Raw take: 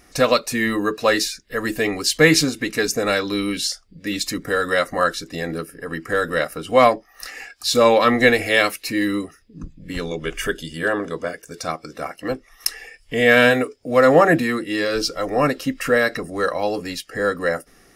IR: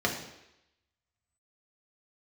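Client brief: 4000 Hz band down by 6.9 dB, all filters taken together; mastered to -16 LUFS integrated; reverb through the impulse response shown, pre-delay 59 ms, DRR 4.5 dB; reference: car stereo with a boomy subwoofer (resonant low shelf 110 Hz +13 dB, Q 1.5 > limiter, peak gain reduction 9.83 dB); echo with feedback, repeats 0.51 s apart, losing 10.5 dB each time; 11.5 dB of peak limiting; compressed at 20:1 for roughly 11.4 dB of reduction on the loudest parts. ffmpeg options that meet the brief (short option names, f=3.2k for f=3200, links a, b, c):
-filter_complex "[0:a]equalizer=f=4k:t=o:g=-9,acompressor=threshold=-20dB:ratio=20,alimiter=limit=-16.5dB:level=0:latency=1,aecho=1:1:510|1020|1530:0.299|0.0896|0.0269,asplit=2[a][b];[1:a]atrim=start_sample=2205,adelay=59[c];[b][c]afir=irnorm=-1:irlink=0,volume=-15dB[d];[a][d]amix=inputs=2:normalize=0,lowshelf=f=110:t=q:w=1.5:g=13,volume=12dB,alimiter=limit=-6dB:level=0:latency=1"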